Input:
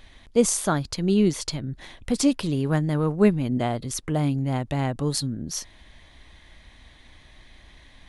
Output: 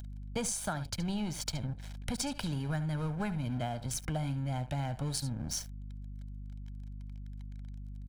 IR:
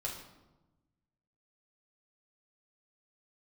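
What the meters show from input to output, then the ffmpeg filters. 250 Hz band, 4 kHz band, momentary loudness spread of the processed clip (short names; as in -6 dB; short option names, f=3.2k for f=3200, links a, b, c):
-13.5 dB, -7.5 dB, 12 LU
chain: -filter_complex "[0:a]acrossover=split=110|720|2000[a][b][c][d];[b]asoftclip=type=tanh:threshold=-23dB[e];[a][e][c][d]amix=inputs=4:normalize=0,aecho=1:1:71:0.2,acompressor=mode=upward:threshold=-43dB:ratio=2.5,equalizer=f=100:w=2.4:g=5.5,aeval=exprs='sgn(val(0))*max(abs(val(0))-0.0112,0)':c=same,aeval=exprs='val(0)+0.00501*(sin(2*PI*50*n/s)+sin(2*PI*2*50*n/s)/2+sin(2*PI*3*50*n/s)/3+sin(2*PI*4*50*n/s)/4+sin(2*PI*5*50*n/s)/5)':c=same,aecho=1:1:1.3:0.57,acompressor=threshold=-33dB:ratio=6,volume=1dB"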